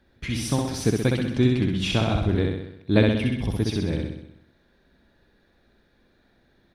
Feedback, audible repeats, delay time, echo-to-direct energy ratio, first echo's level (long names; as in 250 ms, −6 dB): 57%, 7, 64 ms, −1.5 dB, −3.0 dB